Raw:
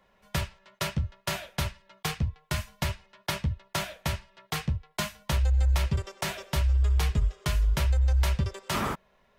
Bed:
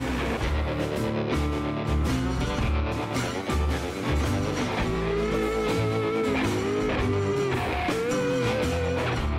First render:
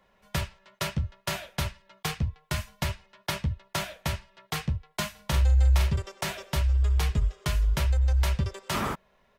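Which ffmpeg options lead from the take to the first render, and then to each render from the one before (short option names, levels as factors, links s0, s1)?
-filter_complex "[0:a]asplit=3[s0][s1][s2];[s0]afade=t=out:st=5.15:d=0.02[s3];[s1]asplit=2[s4][s5];[s5]adelay=44,volume=0.531[s6];[s4][s6]amix=inputs=2:normalize=0,afade=t=in:st=5.15:d=0.02,afade=t=out:st=5.93:d=0.02[s7];[s2]afade=t=in:st=5.93:d=0.02[s8];[s3][s7][s8]amix=inputs=3:normalize=0"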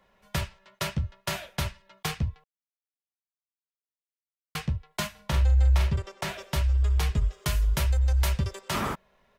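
-filter_complex "[0:a]asettb=1/sr,asplit=3[s0][s1][s2];[s0]atrim=end=5.074[s3];[s1]atrim=start=5.07:end=6.39,asetpts=PTS-STARTPTS,afade=t=in:d=0.004:c=qsin,afade=t=out:st=1.316:d=0.004:c=qsin,highshelf=f=5200:g=-6.5[s4];[s2]atrim=start=6.386[s5];[s3][s4]acrossfade=d=0.004:c1=hsin:c2=qsin[s6];[s6][s5]acrossfade=d=0.004:c1=qsin:c2=hsin,asettb=1/sr,asplit=3[s7][s8][s9];[s7]atrim=end=7.324[s10];[s8]atrim=start=7.32:end=8.61,asetpts=PTS-STARTPTS,afade=t=in:d=0.004:c=qsin,afade=t=out:st=1.286:d=0.004:c=qsin,highshelf=f=8000:g=8[s11];[s9]atrim=start=8.606[s12];[s10][s11]acrossfade=d=0.004:c1=hsin:c2=qsin[s13];[s13][s12]acrossfade=d=0.004:c1=qsin:c2=hsin,asplit=3[s14][s15][s16];[s14]atrim=end=2.44,asetpts=PTS-STARTPTS,afade=t=out:st=2.436:d=0.004:c=hsin[s17];[s15]atrim=start=2.44:end=4.55,asetpts=PTS-STARTPTS,volume=0[s18];[s16]atrim=start=4.55,asetpts=PTS-STARTPTS,afade=t=in:d=0.004:c=hsin[s19];[s17][s18][s19]concat=n=3:v=0:a=1"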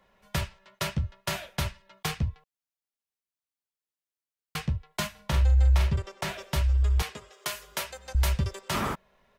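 -filter_complex "[0:a]asettb=1/sr,asplit=3[s0][s1][s2];[s0]atrim=end=7.024[s3];[s1]atrim=start=7.02:end=8.15,asetpts=PTS-STARTPTS,afade=t=in:d=0.004:c=qsin,afade=t=out:st=1.126:d=0.004:c=qsin,highpass=420[s4];[s2]atrim=start=8.146[s5];[s3][s4]acrossfade=d=0.004:c1=hsin:c2=qsin[s6];[s6][s5]acrossfade=d=0.004:c1=qsin:c2=hsin"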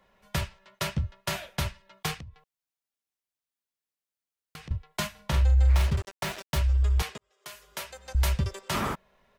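-filter_complex "[0:a]asettb=1/sr,asplit=3[s0][s1][s2];[s0]atrim=end=2.174[s3];[s1]atrim=start=2.17:end=4.71,asetpts=PTS-STARTPTS,afade=t=in:d=0.004:c=qsin,afade=t=out:st=2.536:d=0.004:c=qsin,acompressor=threshold=0.00891:ratio=6:attack=3.2:release=140:knee=1:detection=peak[s4];[s2]atrim=start=4.706[s5];[s3][s4]acrossfade=d=0.004:c1=hsin:c2=qsin[s6];[s6][s5]acrossfade=d=0.004:c1=qsin:c2=hsin,asplit=3[s7][s8][s9];[s7]afade=t=out:st=5.68:d=0.02[s10];[s8]acrusher=bits=5:mix=0:aa=0.5,afade=t=in:st=5.68:d=0.02,afade=t=out:st=6.57:d=0.02[s11];[s9]afade=t=in:st=6.57:d=0.02[s12];[s10][s11][s12]amix=inputs=3:normalize=0,asplit=2[s13][s14];[s13]atrim=end=7.18,asetpts=PTS-STARTPTS,afade=t=out:st=7.176:d=0.004:c=hsin[s15];[s14]atrim=start=7.18,asetpts=PTS-STARTPTS,afade=t=in:d=1.02[s16];[s15][s16]concat=n=2:v=0:a=1"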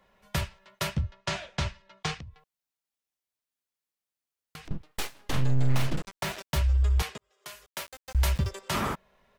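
-filter_complex "[0:a]asettb=1/sr,asplit=3[s0][s1][s2];[s0]atrim=end=1.014[s3];[s1]atrim=start=1.01:end=2.25,asetpts=PTS-STARTPTS,afade=t=in:d=0.004:c=qsin,afade=t=out:st=1.236:d=0.004:c=qsin,lowpass=f=7100:w=0.5412,lowpass=f=7100:w=1.3066[s4];[s2]atrim=start=2.246[s5];[s3][s4]acrossfade=d=0.004:c1=hsin:c2=qsin[s6];[s6][s5]acrossfade=d=0.004:c1=qsin:c2=hsin,asettb=1/sr,asplit=3[s7][s8][s9];[s7]atrim=end=4.654[s10];[s8]atrim=start=4.65:end=6.17,asetpts=PTS-STARTPTS,afade=t=in:d=0.004:c=qsin,afade=t=out:st=1.516:d=0.004:c=qsin,aeval=exprs='abs(val(0))':c=same[s11];[s9]atrim=start=6.166[s12];[s10][s11]acrossfade=d=0.004:c1=hsin:c2=qsin[s13];[s13][s12]acrossfade=d=0.004:c1=qsin:c2=hsin,asettb=1/sr,asplit=3[s14][s15][s16];[s14]atrim=end=7.664[s17];[s15]atrim=start=7.66:end=8.49,asetpts=PTS-STARTPTS,afade=t=in:d=0.004:c=qsin,afade=t=out:st=0.826:d=0.004:c=qsin,aeval=exprs='val(0)*gte(abs(val(0)),0.00944)':c=same[s18];[s16]atrim=start=8.486[s19];[s17][s18]acrossfade=d=0.004:c1=hsin:c2=qsin[s20];[s20][s19]acrossfade=d=0.004:c1=qsin:c2=hsin"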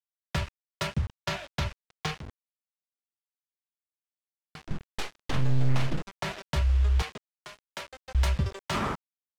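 -af "acrusher=bits=6:mix=0:aa=0.000001,adynamicsmooth=sensitivity=5.5:basefreq=4300"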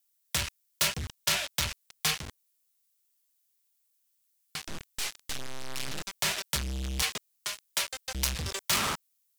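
-af "asoftclip=type=tanh:threshold=0.0237,crystalizer=i=9:c=0"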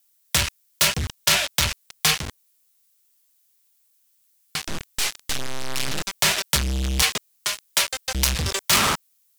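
-af "volume=2.99,alimiter=limit=0.891:level=0:latency=1"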